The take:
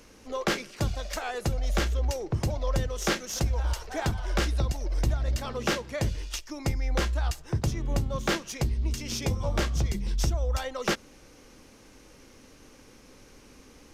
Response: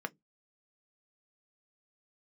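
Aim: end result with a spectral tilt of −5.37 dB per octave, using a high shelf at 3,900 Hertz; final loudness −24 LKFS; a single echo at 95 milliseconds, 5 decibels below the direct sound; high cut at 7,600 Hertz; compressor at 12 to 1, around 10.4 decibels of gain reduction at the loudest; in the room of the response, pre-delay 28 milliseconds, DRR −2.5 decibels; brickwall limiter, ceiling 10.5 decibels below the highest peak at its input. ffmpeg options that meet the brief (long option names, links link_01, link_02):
-filter_complex "[0:a]lowpass=7600,highshelf=frequency=3900:gain=-7,acompressor=threshold=-31dB:ratio=12,alimiter=level_in=4.5dB:limit=-24dB:level=0:latency=1,volume=-4.5dB,aecho=1:1:95:0.562,asplit=2[link_01][link_02];[1:a]atrim=start_sample=2205,adelay=28[link_03];[link_02][link_03]afir=irnorm=-1:irlink=0,volume=0dB[link_04];[link_01][link_04]amix=inputs=2:normalize=0,volume=12dB"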